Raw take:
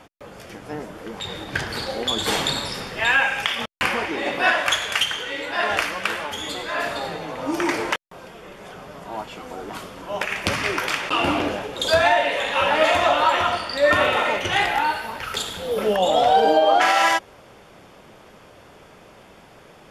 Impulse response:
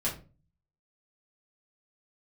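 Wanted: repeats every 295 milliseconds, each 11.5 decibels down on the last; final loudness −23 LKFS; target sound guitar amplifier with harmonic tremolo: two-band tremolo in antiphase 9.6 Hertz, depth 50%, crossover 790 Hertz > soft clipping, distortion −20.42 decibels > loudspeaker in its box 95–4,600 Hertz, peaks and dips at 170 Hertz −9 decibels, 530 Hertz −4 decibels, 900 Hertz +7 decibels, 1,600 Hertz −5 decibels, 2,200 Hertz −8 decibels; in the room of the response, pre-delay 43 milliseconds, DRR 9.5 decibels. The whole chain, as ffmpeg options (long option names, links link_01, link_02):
-filter_complex "[0:a]aecho=1:1:295|590|885:0.266|0.0718|0.0194,asplit=2[link_01][link_02];[1:a]atrim=start_sample=2205,adelay=43[link_03];[link_02][link_03]afir=irnorm=-1:irlink=0,volume=-15.5dB[link_04];[link_01][link_04]amix=inputs=2:normalize=0,acrossover=split=790[link_05][link_06];[link_05]aeval=exprs='val(0)*(1-0.5/2+0.5/2*cos(2*PI*9.6*n/s))':channel_layout=same[link_07];[link_06]aeval=exprs='val(0)*(1-0.5/2-0.5/2*cos(2*PI*9.6*n/s))':channel_layout=same[link_08];[link_07][link_08]amix=inputs=2:normalize=0,asoftclip=threshold=-11dB,highpass=95,equalizer=frequency=170:width_type=q:width=4:gain=-9,equalizer=frequency=530:width_type=q:width=4:gain=-4,equalizer=frequency=900:width_type=q:width=4:gain=7,equalizer=frequency=1600:width_type=q:width=4:gain=-5,equalizer=frequency=2200:width_type=q:width=4:gain=-8,lowpass=frequency=4600:width=0.5412,lowpass=frequency=4600:width=1.3066,volume=1dB"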